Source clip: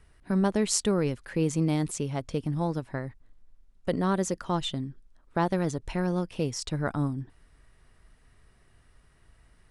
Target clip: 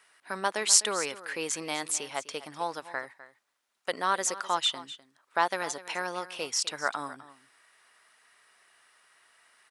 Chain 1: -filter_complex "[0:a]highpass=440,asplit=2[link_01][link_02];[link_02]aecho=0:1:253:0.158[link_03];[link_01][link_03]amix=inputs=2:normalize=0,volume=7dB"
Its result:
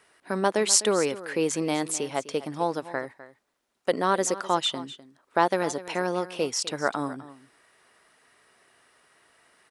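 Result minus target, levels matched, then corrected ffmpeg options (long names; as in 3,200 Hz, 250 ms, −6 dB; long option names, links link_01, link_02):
500 Hz band +6.5 dB
-filter_complex "[0:a]highpass=960,asplit=2[link_01][link_02];[link_02]aecho=0:1:253:0.158[link_03];[link_01][link_03]amix=inputs=2:normalize=0,volume=7dB"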